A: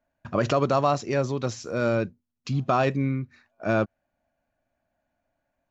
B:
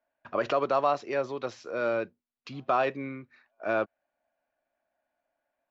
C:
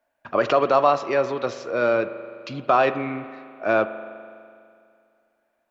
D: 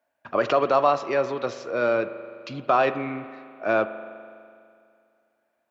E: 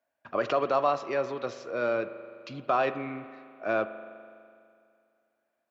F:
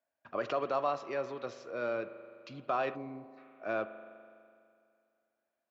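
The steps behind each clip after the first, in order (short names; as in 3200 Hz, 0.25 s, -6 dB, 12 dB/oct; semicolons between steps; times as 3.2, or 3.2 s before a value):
three-band isolator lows -18 dB, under 330 Hz, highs -20 dB, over 4300 Hz; gain -2 dB
spring tank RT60 2.3 s, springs 41 ms, chirp 45 ms, DRR 11.5 dB; gain +7.5 dB
HPF 71 Hz; gain -2 dB
notch 890 Hz, Q 24; gain -5.5 dB
spectral gain 2.95–3.37, 1100–3900 Hz -13 dB; gain -6.5 dB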